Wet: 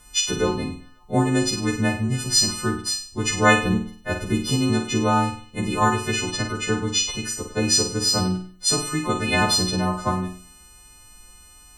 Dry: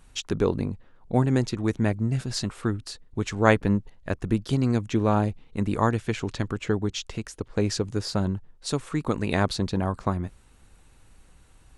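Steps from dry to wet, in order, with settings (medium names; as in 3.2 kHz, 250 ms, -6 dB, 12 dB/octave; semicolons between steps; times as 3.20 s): partials quantised in pitch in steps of 3 st; flutter echo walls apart 8.4 m, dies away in 0.46 s; trim +2 dB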